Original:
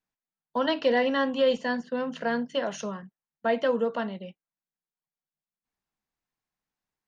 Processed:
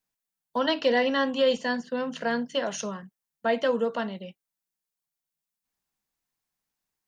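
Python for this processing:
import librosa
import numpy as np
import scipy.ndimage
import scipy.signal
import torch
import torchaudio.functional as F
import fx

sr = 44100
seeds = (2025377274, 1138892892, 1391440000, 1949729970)

y = fx.high_shelf(x, sr, hz=4500.0, db=9.5)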